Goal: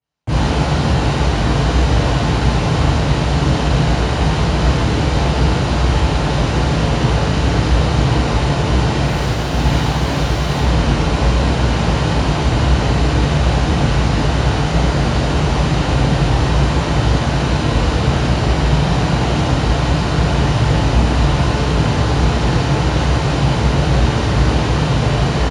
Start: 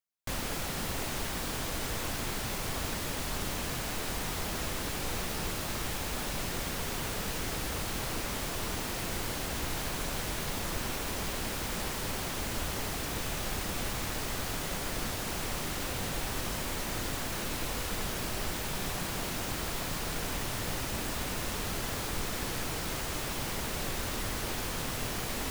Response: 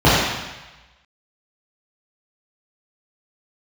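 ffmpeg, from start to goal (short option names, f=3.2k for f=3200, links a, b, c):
-filter_complex "[0:a]aresample=22050,aresample=44100,asettb=1/sr,asplit=3[a][b][c];[a]atrim=end=9.054[d];[b]atrim=start=9.05:end=10.6,asetpts=PTS-STARTPTS,afade=t=in:d=0.004:c=qsin,afade=t=out:st=1.546:d=0.004:c=qsin,acrusher=bits=4:mix=0:aa=0.5[e];[c]atrim=start=10.596[f];[d][e]acrossfade=d=0.004:c1=hsin:c2=qsin[g];[g][f]acrossfade=d=0.004:c1=qsin:c2=hsin[h];[1:a]atrim=start_sample=2205,afade=t=out:st=0.22:d=0.01,atrim=end_sample=10143[i];[h][i]afir=irnorm=-1:irlink=0,volume=-11dB"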